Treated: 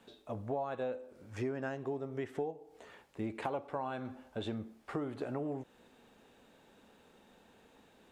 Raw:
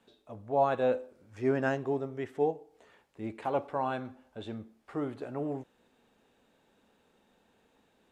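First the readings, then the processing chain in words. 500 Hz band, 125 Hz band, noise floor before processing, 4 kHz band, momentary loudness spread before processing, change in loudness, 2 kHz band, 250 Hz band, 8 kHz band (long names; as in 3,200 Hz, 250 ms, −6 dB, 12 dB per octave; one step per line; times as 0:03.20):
−7.5 dB, −3.0 dB, −70 dBFS, −0.5 dB, 17 LU, −7.0 dB, −6.5 dB, −4.0 dB, can't be measured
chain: downward compressor 12 to 1, threshold −39 dBFS, peak gain reduction 18.5 dB
level +5.5 dB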